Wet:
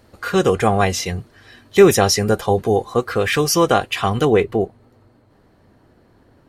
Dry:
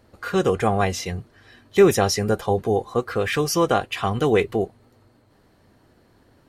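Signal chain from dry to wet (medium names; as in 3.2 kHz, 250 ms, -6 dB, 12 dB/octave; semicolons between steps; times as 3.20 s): treble shelf 2.4 kHz +3 dB, from 4.25 s -7.5 dB; trim +4 dB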